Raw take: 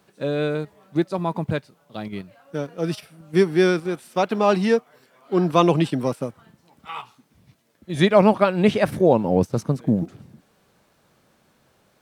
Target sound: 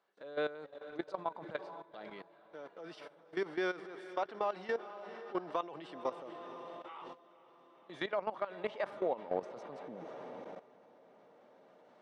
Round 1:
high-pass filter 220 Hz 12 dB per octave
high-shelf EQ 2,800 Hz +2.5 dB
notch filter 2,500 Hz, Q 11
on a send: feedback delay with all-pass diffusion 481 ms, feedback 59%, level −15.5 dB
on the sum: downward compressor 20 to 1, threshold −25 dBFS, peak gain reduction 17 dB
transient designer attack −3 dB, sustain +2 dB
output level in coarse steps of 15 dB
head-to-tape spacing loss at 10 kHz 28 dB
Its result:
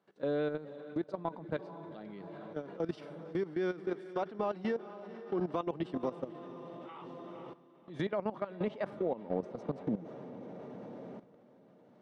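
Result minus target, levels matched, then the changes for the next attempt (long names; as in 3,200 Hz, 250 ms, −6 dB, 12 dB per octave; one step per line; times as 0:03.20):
250 Hz band +6.0 dB
change: high-pass filter 630 Hz 12 dB per octave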